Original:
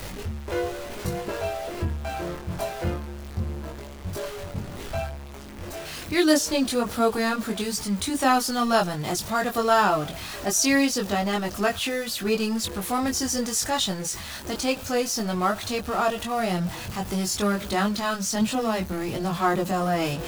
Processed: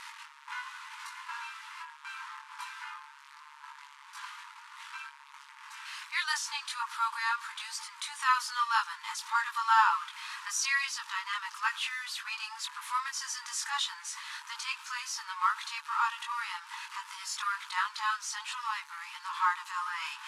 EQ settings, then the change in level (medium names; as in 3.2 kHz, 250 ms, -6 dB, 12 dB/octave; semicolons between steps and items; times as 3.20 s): brick-wall FIR high-pass 860 Hz; low-pass 11 kHz 24 dB/octave; treble shelf 3.5 kHz -12 dB; 0.0 dB